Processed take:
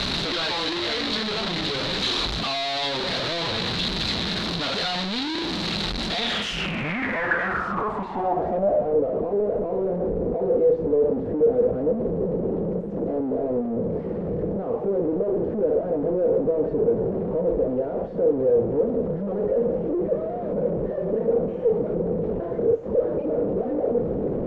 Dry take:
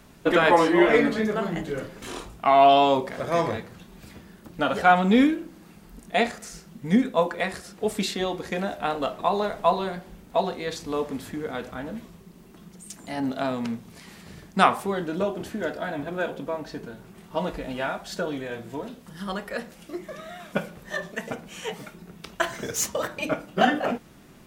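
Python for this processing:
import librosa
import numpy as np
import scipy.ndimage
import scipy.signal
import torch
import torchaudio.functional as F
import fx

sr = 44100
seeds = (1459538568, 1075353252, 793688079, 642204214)

y = np.sign(x) * np.sqrt(np.mean(np.square(x)))
y = fx.filter_sweep_lowpass(y, sr, from_hz=4000.0, to_hz=480.0, start_s=6.16, end_s=8.96, q=6.1)
y = y * librosa.db_to_amplitude(-2.5)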